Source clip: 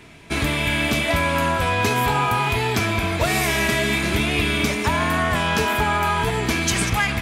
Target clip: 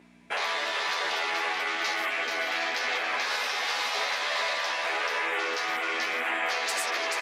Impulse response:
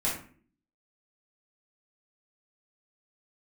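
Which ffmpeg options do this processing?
-filter_complex "[0:a]afwtdn=0.0316,aeval=exprs='val(0)+0.0112*(sin(2*PI*60*n/s)+sin(2*PI*2*60*n/s)/2+sin(2*PI*3*60*n/s)/3+sin(2*PI*4*60*n/s)/4+sin(2*PI*5*60*n/s)/5)':c=same,afftfilt=real='re*lt(hypot(re,im),0.141)':imag='im*lt(hypot(re,im),0.141)':win_size=1024:overlap=0.75,equalizer=f=3.1k:w=2.6:g=-5.5,bandreject=f=1.3k:w=16,asplit=2[a][b];[b]aecho=0:1:434:0.631[c];[a][c]amix=inputs=2:normalize=0,asoftclip=type=tanh:threshold=-13dB,highshelf=f=7.7k:g=-7.5,alimiter=limit=-23.5dB:level=0:latency=1:release=219,highpass=520,asplit=2[d][e];[e]adelay=12,volume=-3dB[f];[d][f]amix=inputs=2:normalize=0,volume=3dB"

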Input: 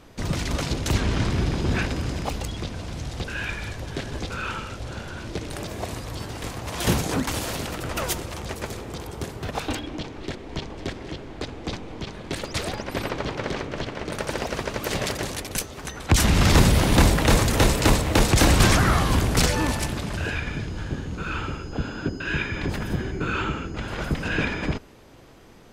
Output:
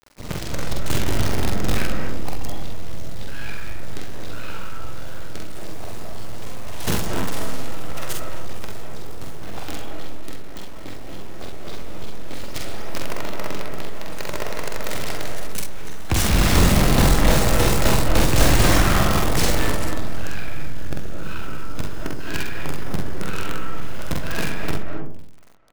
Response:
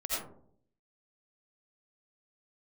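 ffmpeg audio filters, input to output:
-filter_complex "[0:a]acrusher=bits=4:dc=4:mix=0:aa=0.000001,aecho=1:1:46|67:0.708|0.376,asplit=2[a][b];[1:a]atrim=start_sample=2205,lowpass=2k,adelay=128[c];[b][c]afir=irnorm=-1:irlink=0,volume=-7dB[d];[a][d]amix=inputs=2:normalize=0,volume=-4dB"

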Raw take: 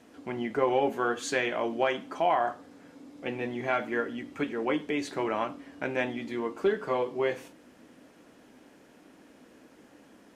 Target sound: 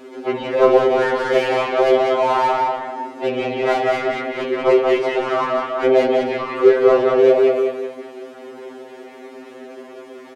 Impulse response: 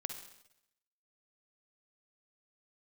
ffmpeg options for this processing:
-filter_complex "[0:a]asplit=2[a][b];[b]aecho=0:1:194|388|582|776:0.501|0.155|0.0482|0.0149[c];[a][c]amix=inputs=2:normalize=0,acrossover=split=3100[d][e];[e]acompressor=threshold=-58dB:ratio=4:attack=1:release=60[f];[d][f]amix=inputs=2:normalize=0,asplit=2[g][h];[1:a]atrim=start_sample=2205,afade=t=out:st=0.27:d=0.01,atrim=end_sample=12348,adelay=56[i];[h][i]afir=irnorm=-1:irlink=0,volume=-12dB[j];[g][j]amix=inputs=2:normalize=0,asplit=3[k][l][m];[l]asetrate=55563,aresample=44100,atempo=0.793701,volume=-2dB[n];[m]asetrate=66075,aresample=44100,atempo=0.66742,volume=-16dB[o];[k][n][o]amix=inputs=3:normalize=0,asplit=2[p][q];[q]adelay=180,highpass=300,lowpass=3.4k,asoftclip=type=hard:threshold=-19dB,volume=-6dB[r];[p][r]amix=inputs=2:normalize=0,asplit=2[s][t];[t]highpass=f=720:p=1,volume=24dB,asoftclip=type=tanh:threshold=-10dB[u];[s][u]amix=inputs=2:normalize=0,lowpass=f=3.1k:p=1,volume=-6dB,equalizer=f=400:w=1.2:g=11.5,afftfilt=real='re*2.45*eq(mod(b,6),0)':imag='im*2.45*eq(mod(b,6),0)':win_size=2048:overlap=0.75,volume=-3dB"

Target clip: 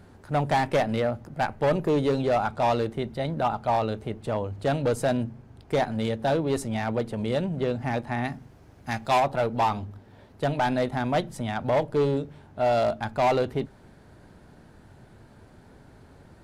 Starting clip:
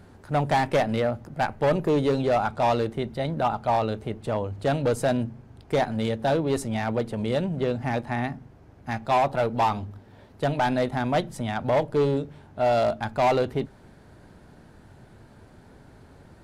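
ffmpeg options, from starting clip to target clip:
-filter_complex "[0:a]asettb=1/sr,asplit=3[a][b][c];[a]atrim=end=8.254[d];[b]atrim=start=8.25:end=9.2,asetpts=PTS-STARTPTS,afade=t=in:d=0.004:c=qsin,afade=t=out:st=0.946:d=0.004:c=qsin,highshelf=f=2.9k:g=9[e];[c]atrim=start=9.196[f];[d][e]acrossfade=d=0.004:c1=hsin:c2=qsin[g];[g][f]acrossfade=d=0.004:c1=qsin:c2=hsin,volume=-1dB"

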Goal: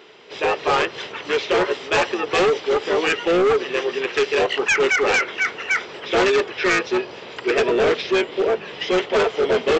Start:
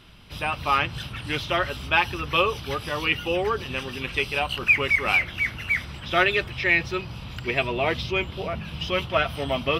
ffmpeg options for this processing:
-filter_complex "[0:a]asplit=2[a][b];[b]asetrate=29433,aresample=44100,atempo=1.49831,volume=-3dB[c];[a][c]amix=inputs=2:normalize=0,highpass=f=420:t=q:w=4.9,aresample=16000,asoftclip=type=hard:threshold=-17.5dB,aresample=44100,volume=3dB"

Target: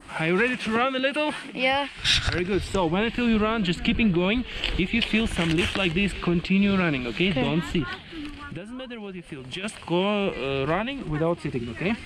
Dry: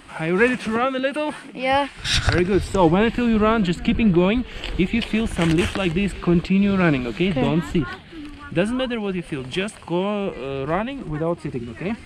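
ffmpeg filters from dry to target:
-filter_complex "[0:a]alimiter=limit=-14dB:level=0:latency=1:release=490,asplit=3[a][b][c];[a]afade=t=out:st=8.3:d=0.02[d];[b]acompressor=threshold=-34dB:ratio=6,afade=t=in:st=8.3:d=0.02,afade=t=out:st=9.63:d=0.02[e];[c]afade=t=in:st=9.63:d=0.02[f];[d][e][f]amix=inputs=3:normalize=0,adynamicequalizer=threshold=0.00562:dfrequency=3000:dqfactor=0.96:tfrequency=3000:tqfactor=0.96:attack=5:release=100:ratio=0.375:range=3.5:mode=boostabove:tftype=bell"

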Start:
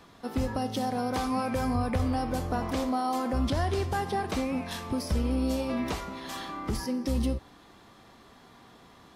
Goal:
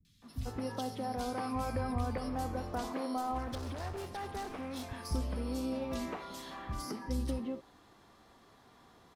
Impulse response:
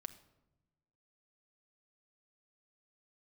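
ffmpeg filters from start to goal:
-filter_complex "[0:a]asettb=1/sr,asplit=3[a][b][c];[a]atrim=end=3.164[d];[b]atrim=start=3.16:end=4.91,asetpts=PTS-STARTPTS,afade=t=in:d=0.004:c=qsin,afade=t=out:st=1.746:d=0.004:c=qsin,volume=31dB,asoftclip=hard,volume=-31dB[e];[c]atrim=start=4.906[f];[d][e]acrossfade=d=0.004:c1=hsin:c2=qsin[g];[g][f]acrossfade=d=0.004:c1=qsin:c2=hsin,acrossover=split=190|2700[h][i][j];[j]adelay=50[k];[i]adelay=220[l];[h][l][k]amix=inputs=3:normalize=0,volume=-6dB"

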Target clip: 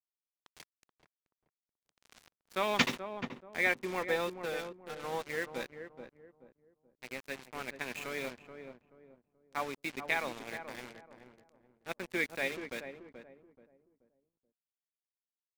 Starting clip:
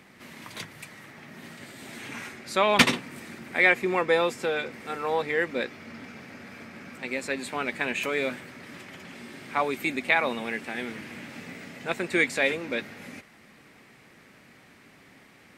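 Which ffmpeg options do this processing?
-filter_complex "[0:a]aresample=16000,aresample=44100,aeval=exprs='sgn(val(0))*max(abs(val(0))-0.0168,0)':c=same,acrusher=bits=5:mix=0:aa=0.5,asplit=2[a][b];[b]adelay=430,lowpass=f=840:p=1,volume=-7dB,asplit=2[c][d];[d]adelay=430,lowpass=f=840:p=1,volume=0.35,asplit=2[e][f];[f]adelay=430,lowpass=f=840:p=1,volume=0.35,asplit=2[g][h];[h]adelay=430,lowpass=f=840:p=1,volume=0.35[i];[a][c][e][g][i]amix=inputs=5:normalize=0,volume=-8.5dB"

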